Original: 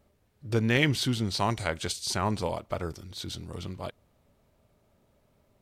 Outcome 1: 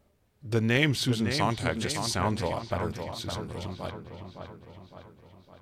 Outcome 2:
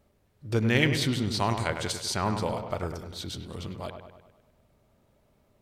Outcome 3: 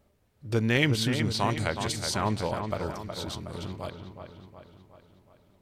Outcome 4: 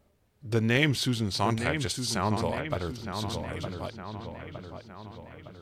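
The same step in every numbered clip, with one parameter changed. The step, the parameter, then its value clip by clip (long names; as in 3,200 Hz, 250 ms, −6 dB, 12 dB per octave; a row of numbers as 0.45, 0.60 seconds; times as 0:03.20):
delay with a low-pass on its return, delay time: 560, 101, 368, 912 milliseconds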